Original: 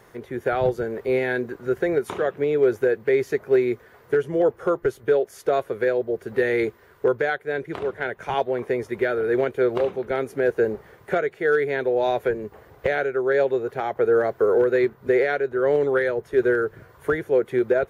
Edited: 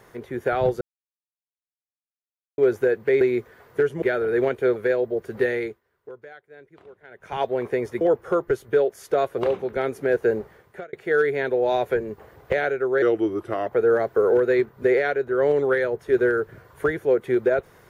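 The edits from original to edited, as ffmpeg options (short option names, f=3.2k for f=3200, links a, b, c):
-filter_complex "[0:a]asplit=13[a][b][c][d][e][f][g][h][i][j][k][l][m];[a]atrim=end=0.81,asetpts=PTS-STARTPTS,afade=t=out:st=0.806:d=0.004:c=hsin[n];[b]atrim=start=0.81:end=2.58,asetpts=PTS-STARTPTS,volume=0[o];[c]atrim=start=2.58:end=3.212,asetpts=PTS-STARTPTS,afade=t=in:d=0.004:c=hsin[p];[d]atrim=start=3.548:end=4.362[q];[e]atrim=start=8.978:end=9.722[r];[f]atrim=start=5.728:end=6.78,asetpts=PTS-STARTPTS,afade=t=out:st=0.652:d=0.4:silence=0.1[s];[g]atrim=start=6.78:end=8.07,asetpts=PTS-STARTPTS,volume=-20dB[t];[h]atrim=start=8.07:end=8.982,asetpts=PTS-STARTPTS,afade=t=in:d=0.4:silence=0.1[u];[i]atrim=start=4.358:end=5.732[v];[j]atrim=start=9.718:end=11.27,asetpts=PTS-STARTPTS,afade=t=out:st=0.992:d=0.56[w];[k]atrim=start=11.27:end=13.364,asetpts=PTS-STARTPTS,afade=t=in:d=0.004:c=hsin[x];[l]atrim=start=13.36:end=13.91,asetpts=PTS-STARTPTS,asetrate=37485,aresample=44100,atrim=end_sample=28535,asetpts=PTS-STARTPTS[y];[m]atrim=start=13.906[z];[n][o][p]concat=n=3:v=0:a=1[aa];[aa][q]acrossfade=d=0.004:c1=hsin:c2=hsin[ab];[ab][r]acrossfade=d=0.004:c1=hsin:c2=hsin[ac];[s][t][u]concat=n=3:v=0:a=1[ad];[ac][ad]acrossfade=d=0.004:c1=hsin:c2=hsin[ae];[ae][v]acrossfade=d=0.004:c1=hsin:c2=hsin[af];[w][x]concat=n=2:v=0:a=1[ag];[af][ag]acrossfade=d=0.004:c1=hsin:c2=hsin[ah];[ah][y]acrossfade=d=0.004:c1=hsin:c2=hsin[ai];[ai][z]acrossfade=d=0.004:c1=hsin:c2=hsin"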